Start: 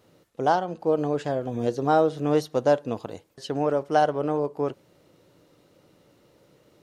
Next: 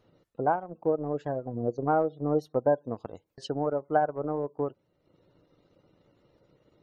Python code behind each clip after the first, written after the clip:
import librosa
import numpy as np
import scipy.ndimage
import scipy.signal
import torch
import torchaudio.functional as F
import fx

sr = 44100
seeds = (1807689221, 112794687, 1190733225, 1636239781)

y = fx.spec_gate(x, sr, threshold_db=-25, keep='strong')
y = fx.low_shelf(y, sr, hz=68.0, db=10.5)
y = fx.transient(y, sr, attack_db=4, sustain_db=-8)
y = y * 10.0 ** (-6.0 / 20.0)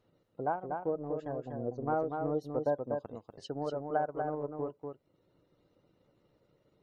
y = x + 10.0 ** (-5.0 / 20.0) * np.pad(x, (int(242 * sr / 1000.0), 0))[:len(x)]
y = y * 10.0 ** (-7.0 / 20.0)